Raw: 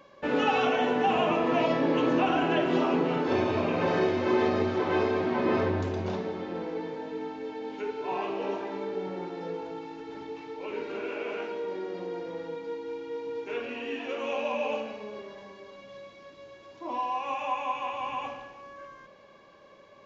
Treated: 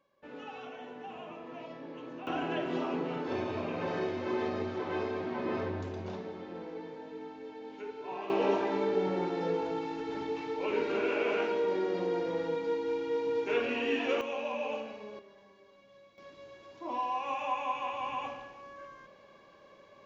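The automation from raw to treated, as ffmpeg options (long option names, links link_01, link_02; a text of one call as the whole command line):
ffmpeg -i in.wav -af "asetnsamples=nb_out_samples=441:pad=0,asendcmd='2.27 volume volume -8dB;8.3 volume volume 4dB;14.21 volume volume -5dB;15.19 volume volume -12.5dB;16.18 volume volume -2.5dB',volume=-19.5dB" out.wav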